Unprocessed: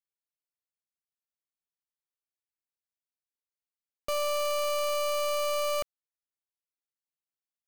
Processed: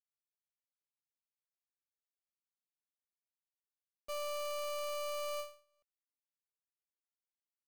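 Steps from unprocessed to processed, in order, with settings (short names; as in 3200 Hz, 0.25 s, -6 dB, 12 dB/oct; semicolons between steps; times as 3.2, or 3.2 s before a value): expander -17 dBFS; ending taper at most 150 dB/s; gain +13 dB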